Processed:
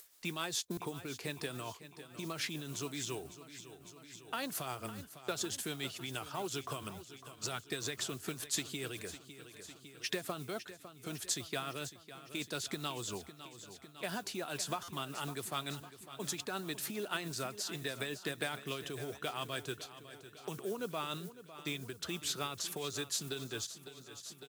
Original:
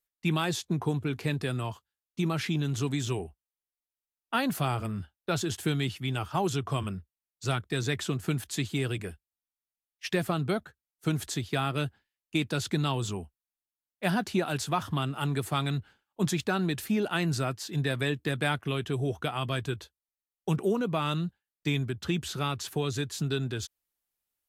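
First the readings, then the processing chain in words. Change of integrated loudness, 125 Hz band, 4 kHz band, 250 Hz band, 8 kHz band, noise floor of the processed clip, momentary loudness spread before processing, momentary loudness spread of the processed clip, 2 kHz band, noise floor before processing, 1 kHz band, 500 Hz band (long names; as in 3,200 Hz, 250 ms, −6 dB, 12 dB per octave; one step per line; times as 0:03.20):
−9.0 dB, −17.0 dB, −4.0 dB, −13.0 dB, +0.5 dB, −58 dBFS, 8 LU, 13 LU, −7.5 dB, below −85 dBFS, −9.0 dB, −9.0 dB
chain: high-shelf EQ 5,500 Hz −9.5 dB
downward compressor 4 to 1, threshold −32 dBFS, peak gain reduction 9 dB
noise gate −51 dBFS, range −7 dB
notch filter 820 Hz, Q 17
repeating echo 554 ms, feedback 58%, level −14 dB
noise that follows the level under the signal 31 dB
upward compression, threshold −42 dBFS
amplitude tremolo 7 Hz, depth 41%
bass and treble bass −11 dB, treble +12 dB
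buffer that repeats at 0:00.72/0:14.83, samples 256, times 8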